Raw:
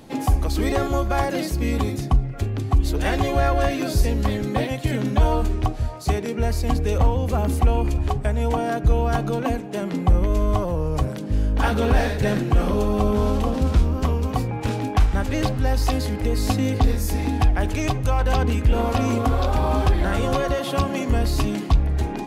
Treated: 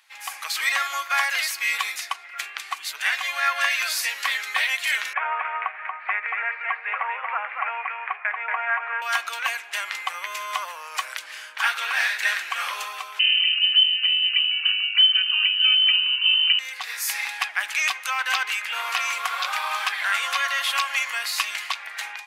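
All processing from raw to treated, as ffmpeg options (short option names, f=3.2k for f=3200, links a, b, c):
-filter_complex "[0:a]asettb=1/sr,asplit=3[a][b][c];[a]atrim=end=5.134[d];[b]atrim=start=5.13:end=9.02,asetpts=PTS-STARTPTS,afade=t=in:d=0.004:c=qsin,afade=t=out:st=3.886:d=0.004:c=qsin,asuperpass=centerf=990:order=12:qfactor=0.51,aecho=1:1:233:0.631,atrim=end_sample=171549[e];[c]atrim=start=9.016[f];[d][e]acrossfade=d=0.004:c1=hsin:c2=qsin[g];[g][f]acrossfade=d=0.004:c1=qsin:c2=hsin,asettb=1/sr,asplit=3[h][i][j];[h]atrim=end=13.194[k];[i]atrim=start=13.19:end=16.59,asetpts=PTS-STARTPTS,afade=t=in:d=0.004:c=qsin,afade=t=out:st=3.396:d=0.004:c=qsin,equalizer=f=960:t=o:w=0.42:g=-14.5,lowpass=f=2.6k:t=q:w=0.5098,lowpass=f=2.6k:t=q:w=0.6013,lowpass=f=2.6k:t=q:w=0.9,lowpass=f=2.6k:t=q:w=2.563,afreqshift=-3100[l];[j]atrim=start=16.586[m];[k][l]acrossfade=d=0.004:c1=hsin:c2=qsin[n];[n][m]acrossfade=d=0.004:c1=qsin:c2=hsin,highpass=f=1.2k:w=0.5412,highpass=f=1.2k:w=1.3066,equalizer=f=2.2k:t=o:w=0.96:g=7,dynaudnorm=f=120:g=5:m=16.5dB,volume=-7.5dB"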